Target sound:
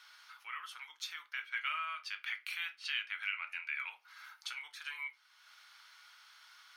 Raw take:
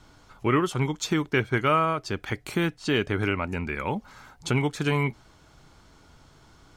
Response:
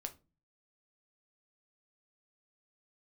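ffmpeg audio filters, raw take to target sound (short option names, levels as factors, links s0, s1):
-filter_complex "[0:a]asettb=1/sr,asplit=3[s0][s1][s2];[s0]atrim=end=1.464[s3];[s1]atrim=start=1.46:end=3.9,asetpts=PTS-STARTPTS,afade=t=in:d=0.004:c=qsin,afade=t=out:st=2.436:d=0.004:c=qsin,equalizer=f=2600:t=o:w=1:g=8.5[s4];[s2]atrim=start=3.896[s5];[s3][s4]acrossfade=d=0.004:c1=hsin:c2=qsin[s6];[s6][s5]acrossfade=d=0.004:c1=qsin:c2=hsin,acompressor=threshold=0.00316:ratio=2,highpass=f=1400:w=0.5412,highpass=f=1400:w=1.3066,equalizer=f=7400:t=o:w=0.38:g=-14[s7];[1:a]atrim=start_sample=2205[s8];[s7][s8]afir=irnorm=-1:irlink=0,volume=2.37"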